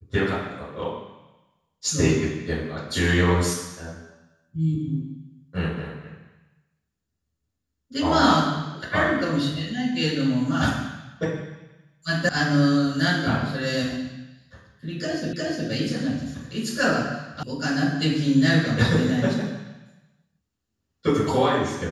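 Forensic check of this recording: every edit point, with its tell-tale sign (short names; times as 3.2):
12.29 sound cut off
15.33 repeat of the last 0.36 s
17.43 sound cut off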